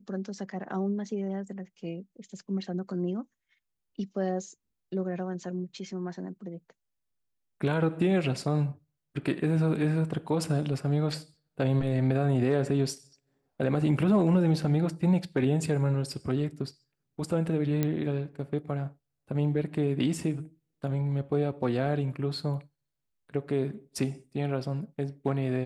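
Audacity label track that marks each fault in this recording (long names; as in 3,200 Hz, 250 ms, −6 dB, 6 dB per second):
17.830000	17.830000	click −14 dBFS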